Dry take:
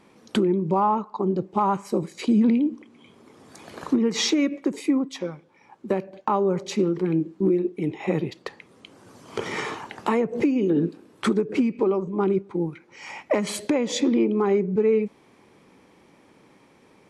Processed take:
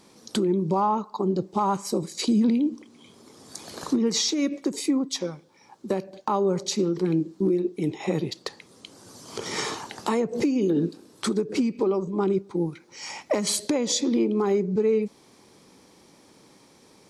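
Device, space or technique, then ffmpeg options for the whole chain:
over-bright horn tweeter: -af "highshelf=f=3400:t=q:w=1.5:g=9,alimiter=limit=0.188:level=0:latency=1:release=247"

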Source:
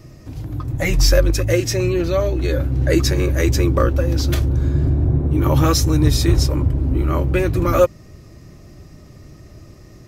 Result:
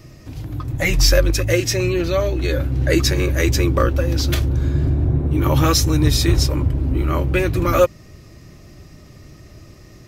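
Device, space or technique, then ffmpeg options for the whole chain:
presence and air boost: -af "equalizer=f=2900:t=o:w=2:g=5,highshelf=f=11000:g=4.5,volume=0.891"

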